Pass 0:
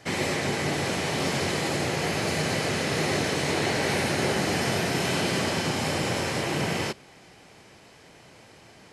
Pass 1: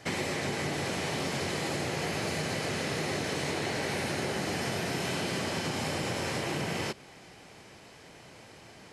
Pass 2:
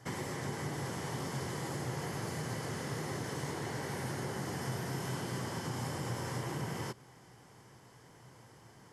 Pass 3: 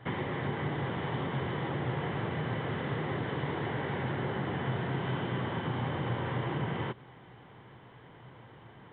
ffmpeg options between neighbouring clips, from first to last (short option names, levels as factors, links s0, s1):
-af "acompressor=threshold=0.0355:ratio=6"
-af "equalizer=f=125:t=o:w=0.33:g=11,equalizer=f=630:t=o:w=0.33:g=-5,equalizer=f=1000:t=o:w=0.33:g=5,equalizer=f=2500:t=o:w=0.33:g=-12,equalizer=f=4000:t=o:w=0.33:g=-9,equalizer=f=12500:t=o:w=0.33:g=6,volume=0.473"
-af "volume=1.78" -ar 8000 -c:a pcm_alaw